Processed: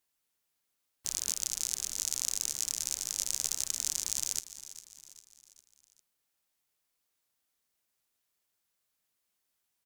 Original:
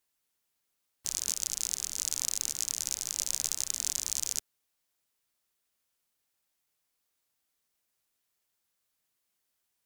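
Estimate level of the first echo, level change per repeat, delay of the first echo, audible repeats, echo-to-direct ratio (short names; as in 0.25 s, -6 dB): -14.5 dB, -6.5 dB, 0.402 s, 4, -13.5 dB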